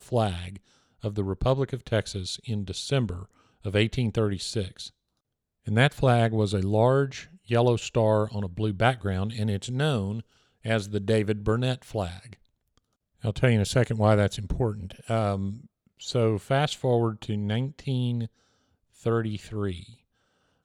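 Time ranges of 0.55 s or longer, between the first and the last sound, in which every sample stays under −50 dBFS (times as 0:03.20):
0:04.90–0:05.66
0:18.27–0:18.95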